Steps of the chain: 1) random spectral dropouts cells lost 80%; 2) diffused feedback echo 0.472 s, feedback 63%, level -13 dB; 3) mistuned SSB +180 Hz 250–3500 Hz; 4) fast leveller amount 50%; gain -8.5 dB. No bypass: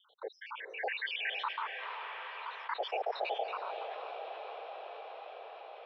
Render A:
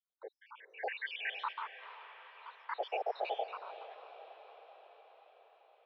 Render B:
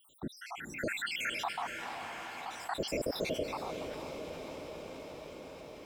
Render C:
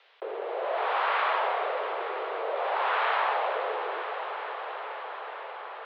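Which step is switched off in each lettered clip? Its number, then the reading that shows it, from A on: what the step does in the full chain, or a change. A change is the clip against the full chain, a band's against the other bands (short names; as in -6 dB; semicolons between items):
4, crest factor change +2.5 dB; 3, 250 Hz band +21.0 dB; 1, 4 kHz band -7.0 dB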